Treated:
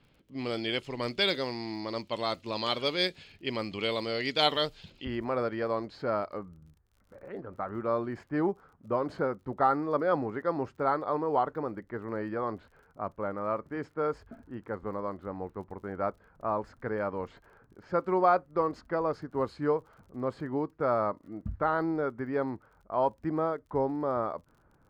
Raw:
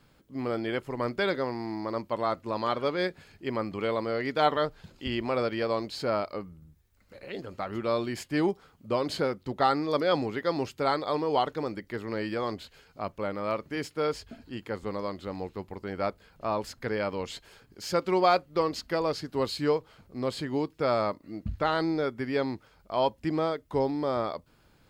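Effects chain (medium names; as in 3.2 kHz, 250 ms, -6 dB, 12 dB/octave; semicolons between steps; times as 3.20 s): level-controlled noise filter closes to 1.8 kHz, open at -23.5 dBFS; resonant high shelf 2.1 kHz +10 dB, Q 1.5, from 5.05 s -7 dB, from 6.39 s -14 dB; crackle 39 per s -51 dBFS; trim -2.5 dB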